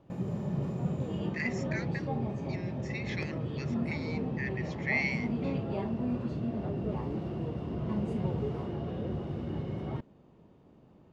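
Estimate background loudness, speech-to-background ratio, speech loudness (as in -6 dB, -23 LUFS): -34.5 LUFS, -3.0 dB, -37.5 LUFS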